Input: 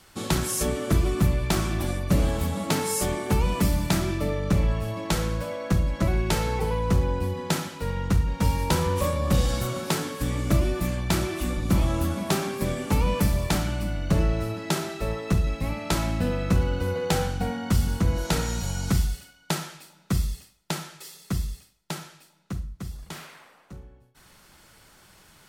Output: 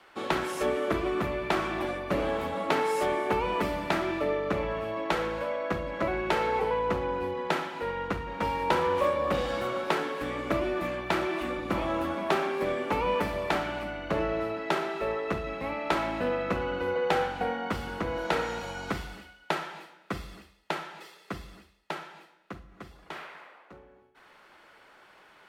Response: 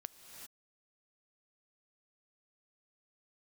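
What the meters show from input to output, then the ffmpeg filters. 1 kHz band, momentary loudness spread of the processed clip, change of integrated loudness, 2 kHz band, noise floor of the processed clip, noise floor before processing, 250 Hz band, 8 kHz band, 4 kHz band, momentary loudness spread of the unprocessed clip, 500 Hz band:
+3.0 dB, 14 LU, −3.5 dB, +1.5 dB, −58 dBFS, −57 dBFS, −6.0 dB, −16.0 dB, −5.0 dB, 10 LU, +1.5 dB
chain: -filter_complex "[0:a]acrossover=split=310 3100:gain=0.0891 1 0.0891[link_01][link_02][link_03];[link_01][link_02][link_03]amix=inputs=3:normalize=0,asplit=2[link_04][link_05];[1:a]atrim=start_sample=2205,asetrate=61740,aresample=44100[link_06];[link_05][link_06]afir=irnorm=-1:irlink=0,volume=0.5dB[link_07];[link_04][link_07]amix=inputs=2:normalize=0"

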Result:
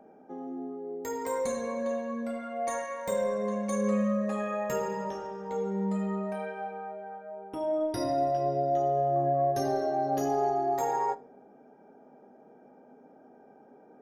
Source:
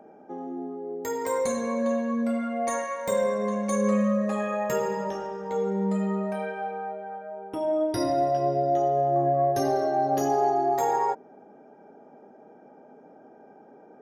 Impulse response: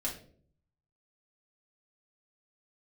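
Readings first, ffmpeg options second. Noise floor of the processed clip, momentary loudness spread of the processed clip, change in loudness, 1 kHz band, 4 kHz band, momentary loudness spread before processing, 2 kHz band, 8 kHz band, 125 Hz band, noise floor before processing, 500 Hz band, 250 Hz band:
−56 dBFS, 11 LU, −4.0 dB, −4.0 dB, −4.5 dB, 12 LU, −4.5 dB, −5.0 dB, −3.5 dB, −52 dBFS, −4.0 dB, −4.5 dB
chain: -filter_complex "[0:a]lowshelf=frequency=73:gain=6,asplit=2[link_01][link_02];[1:a]atrim=start_sample=2205[link_03];[link_02][link_03]afir=irnorm=-1:irlink=0,volume=-11dB[link_04];[link_01][link_04]amix=inputs=2:normalize=0,volume=-6.5dB"

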